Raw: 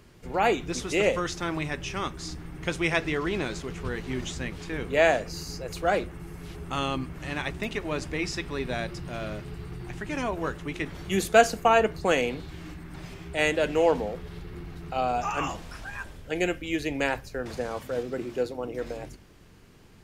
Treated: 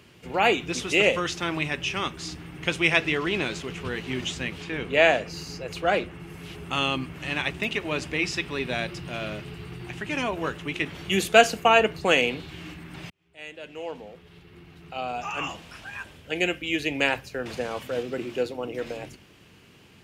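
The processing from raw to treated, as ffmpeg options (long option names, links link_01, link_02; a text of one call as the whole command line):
ffmpeg -i in.wav -filter_complex "[0:a]asettb=1/sr,asplit=3[link_01][link_02][link_03];[link_01]atrim=end=4.624[link_04];[link_02]atrim=start=4.62:end=6.3,asetpts=PTS-STARTPTS,afade=type=in:duration=0.004:curve=qsin,afade=type=out:start_time=1.676:duration=0.004:curve=qsin,highshelf=frequency=6600:gain=-7.5[link_05];[link_03]atrim=start=6.296[link_06];[link_04][link_05]acrossfade=duration=0.004:curve1=hsin:curve2=qsin[link_07];[link_07][link_06]acrossfade=duration=0.004:curve1=qsin:curve2=hsin,asplit=2[link_08][link_09];[link_08]atrim=end=13.1,asetpts=PTS-STARTPTS,afade=type=out:start_time=13.096:duration=0.004:curve=hsin[link_10];[link_09]atrim=start=13.1,asetpts=PTS-STARTPTS,afade=type=in:duration=4.03[link_11];[link_10][link_11]concat=n=2:v=0:a=1,highpass=89,equalizer=frequency=2800:width_type=o:width=0.73:gain=9,volume=1dB" out.wav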